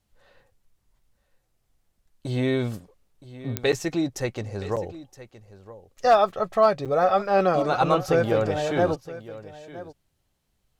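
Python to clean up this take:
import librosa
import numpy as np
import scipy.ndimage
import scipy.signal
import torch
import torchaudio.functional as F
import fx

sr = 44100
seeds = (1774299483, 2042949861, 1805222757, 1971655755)

y = fx.fix_declip(x, sr, threshold_db=-9.5)
y = fx.fix_declick_ar(y, sr, threshold=10.0)
y = fx.fix_interpolate(y, sr, at_s=(3.72, 4.76, 6.85), length_ms=7.1)
y = fx.fix_echo_inverse(y, sr, delay_ms=968, level_db=-16.5)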